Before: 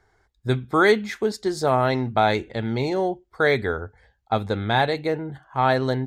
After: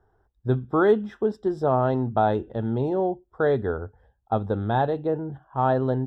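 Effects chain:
moving average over 20 samples

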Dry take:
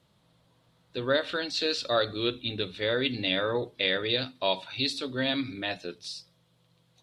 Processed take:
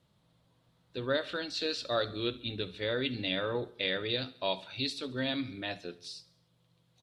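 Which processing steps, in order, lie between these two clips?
low-shelf EQ 240 Hz +4 dB
repeating echo 69 ms, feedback 56%, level −20.5 dB
level −5.5 dB

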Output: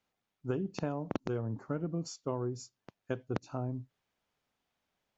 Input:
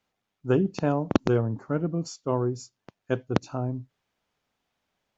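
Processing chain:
downward compressor 12 to 1, threshold −25 dBFS, peak gain reduction 12 dB
level −4.5 dB

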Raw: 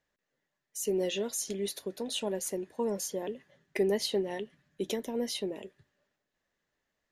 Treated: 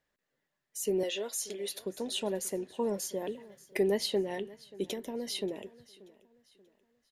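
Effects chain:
0:01.03–0:01.70: high-pass filter 420 Hz 12 dB per octave
0:03.20–0:03.80: high-shelf EQ 11,000 Hz +10 dB
0:04.85–0:05.27: downward compressor 4 to 1, threshold −34 dBFS, peak gain reduction 6 dB
parametric band 6,200 Hz −3.5 dB 0.24 octaves
repeating echo 583 ms, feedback 38%, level −21 dB

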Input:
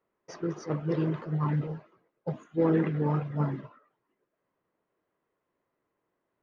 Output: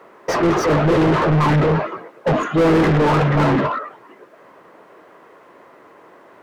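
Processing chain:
mid-hump overdrive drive 39 dB, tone 1,300 Hz, clips at −15.5 dBFS
level +7.5 dB

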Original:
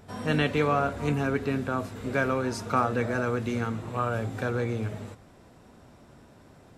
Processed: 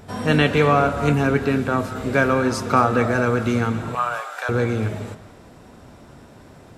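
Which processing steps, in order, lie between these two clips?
0:03.95–0:04.49: high-pass filter 720 Hz 24 dB per octave
on a send: parametric band 1,400 Hz +5.5 dB + convolution reverb, pre-delay 3 ms, DRR 11.5 dB
on the sum: level +8 dB

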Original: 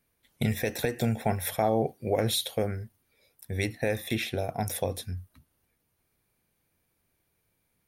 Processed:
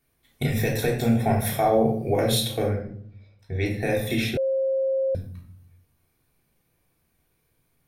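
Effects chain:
0:02.68–0:03.66: high-frequency loss of the air 180 metres
rectangular room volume 850 cubic metres, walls furnished, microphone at 3.4 metres
0:04.37–0:05.15: beep over 534 Hz −20.5 dBFS

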